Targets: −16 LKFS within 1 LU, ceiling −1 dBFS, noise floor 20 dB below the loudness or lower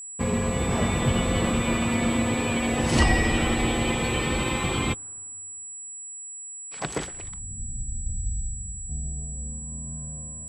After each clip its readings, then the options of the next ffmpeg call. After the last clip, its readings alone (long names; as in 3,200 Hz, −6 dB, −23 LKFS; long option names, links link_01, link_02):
interfering tone 7,800 Hz; level of the tone −36 dBFS; integrated loudness −27.0 LKFS; sample peak −8.0 dBFS; target loudness −16.0 LKFS
→ -af "bandreject=frequency=7800:width=30"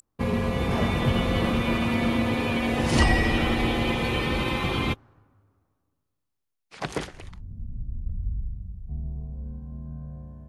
interfering tone none found; integrated loudness −26.0 LKFS; sample peak −8.0 dBFS; target loudness −16.0 LKFS
→ -af "volume=10dB,alimiter=limit=-1dB:level=0:latency=1"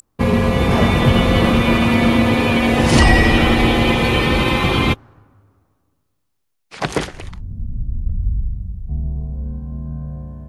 integrated loudness −16.0 LKFS; sample peak −1.0 dBFS; background noise floor −69 dBFS